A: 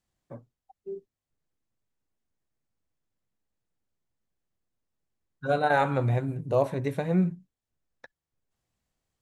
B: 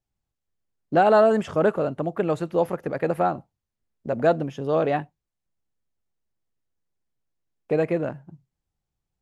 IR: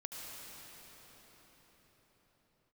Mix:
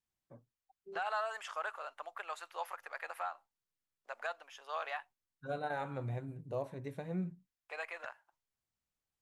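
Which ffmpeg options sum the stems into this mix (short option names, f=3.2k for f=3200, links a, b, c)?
-filter_complex "[0:a]volume=-2.5dB[a];[1:a]highpass=f=950:w=0.5412,highpass=f=950:w=1.3066,volume=-5dB,asplit=2[b][c];[c]apad=whole_len=406167[d];[a][d]sidechaingate=range=-11dB:threshold=-54dB:ratio=16:detection=peak[e];[e][b]amix=inputs=2:normalize=0,asoftclip=type=tanh:threshold=-16.5dB,alimiter=level_in=3.5dB:limit=-24dB:level=0:latency=1:release=327,volume=-3.5dB"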